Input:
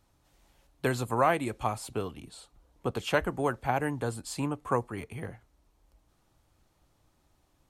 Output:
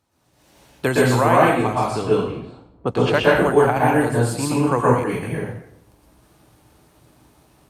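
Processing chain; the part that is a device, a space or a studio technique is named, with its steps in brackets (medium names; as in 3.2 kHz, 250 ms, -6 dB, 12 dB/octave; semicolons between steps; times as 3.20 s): 1.41–3.24 s: level-controlled noise filter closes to 670 Hz, open at -26 dBFS; far-field microphone of a smart speaker (reverberation RT60 0.70 s, pre-delay 111 ms, DRR -6 dB; high-pass 85 Hz 12 dB/octave; level rider gain up to 12 dB; trim -1 dB; Opus 48 kbps 48 kHz)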